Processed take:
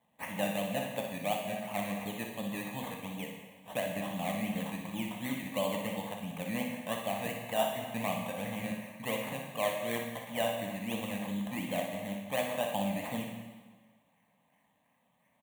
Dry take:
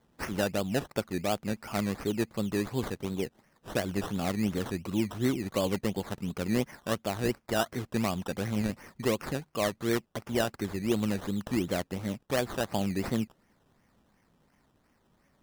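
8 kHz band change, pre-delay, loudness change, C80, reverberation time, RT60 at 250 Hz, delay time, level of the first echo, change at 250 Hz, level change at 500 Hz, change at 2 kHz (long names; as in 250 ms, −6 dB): −3.5 dB, 5 ms, −4.0 dB, 5.5 dB, 1.4 s, 1.5 s, 60 ms, −7.0 dB, −6.0 dB, −3.5 dB, −1.5 dB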